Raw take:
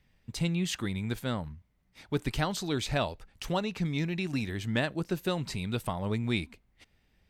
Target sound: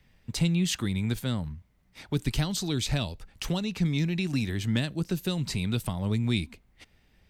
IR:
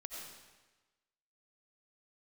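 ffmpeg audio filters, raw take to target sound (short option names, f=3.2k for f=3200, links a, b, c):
-filter_complex "[0:a]acrossover=split=270|3000[a][b][c];[b]acompressor=threshold=-42dB:ratio=6[d];[a][d][c]amix=inputs=3:normalize=0,volume=5.5dB"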